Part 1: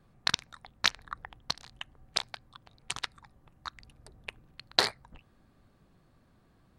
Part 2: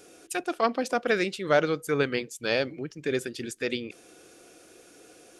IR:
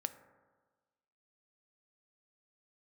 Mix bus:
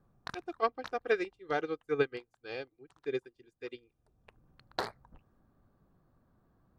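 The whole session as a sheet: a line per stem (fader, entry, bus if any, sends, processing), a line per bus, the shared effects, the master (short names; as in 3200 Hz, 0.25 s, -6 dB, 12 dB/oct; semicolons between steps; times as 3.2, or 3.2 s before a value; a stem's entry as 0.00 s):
-4.5 dB, 0.00 s, no send, band shelf 4700 Hz -12.5 dB 2.8 oct; auto duck -19 dB, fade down 1.90 s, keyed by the second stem
-4.5 dB, 0.00 s, no send, high shelf 4100 Hz -9.5 dB; comb 2.5 ms, depth 69%; upward expander 2.5:1, over -41 dBFS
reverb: off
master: dry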